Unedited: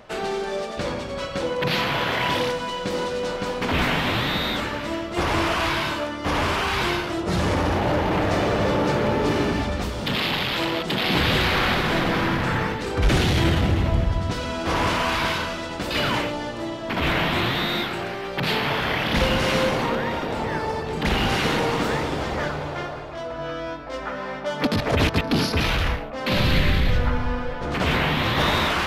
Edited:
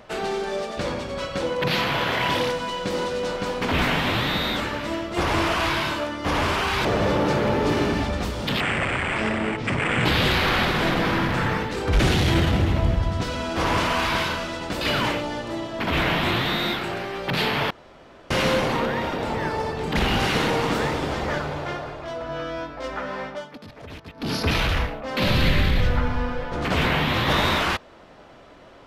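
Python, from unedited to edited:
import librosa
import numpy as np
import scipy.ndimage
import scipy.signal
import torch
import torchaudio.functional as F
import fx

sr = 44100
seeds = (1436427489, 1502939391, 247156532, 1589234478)

y = fx.edit(x, sr, fx.cut(start_s=6.85, length_s=1.59),
    fx.speed_span(start_s=10.19, length_s=0.96, speed=0.66),
    fx.room_tone_fill(start_s=18.8, length_s=0.6),
    fx.fade_down_up(start_s=24.32, length_s=1.22, db=-19.5, fade_s=0.29), tone=tone)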